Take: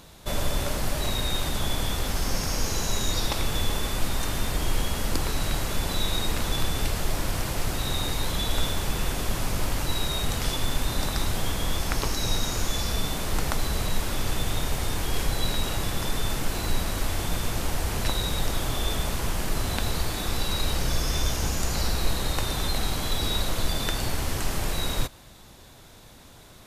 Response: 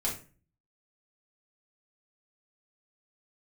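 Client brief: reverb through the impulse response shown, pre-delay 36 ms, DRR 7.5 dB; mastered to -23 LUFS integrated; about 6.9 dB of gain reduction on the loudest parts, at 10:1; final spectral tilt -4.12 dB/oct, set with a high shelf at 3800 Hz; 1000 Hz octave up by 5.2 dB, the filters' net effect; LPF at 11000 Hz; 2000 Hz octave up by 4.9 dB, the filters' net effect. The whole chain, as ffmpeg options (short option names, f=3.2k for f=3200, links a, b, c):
-filter_complex "[0:a]lowpass=11k,equalizer=f=1k:t=o:g=5.5,equalizer=f=2k:t=o:g=6,highshelf=f=3.8k:g=-6,acompressor=threshold=-24dB:ratio=10,asplit=2[a][b];[1:a]atrim=start_sample=2205,adelay=36[c];[b][c]afir=irnorm=-1:irlink=0,volume=-12.5dB[d];[a][d]amix=inputs=2:normalize=0,volume=7.5dB"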